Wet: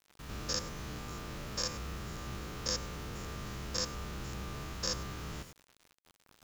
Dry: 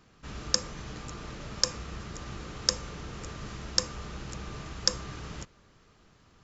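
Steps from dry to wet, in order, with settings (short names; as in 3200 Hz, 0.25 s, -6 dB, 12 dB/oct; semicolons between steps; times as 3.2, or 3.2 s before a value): stepped spectrum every 0.1 s; bit-crush 9-bit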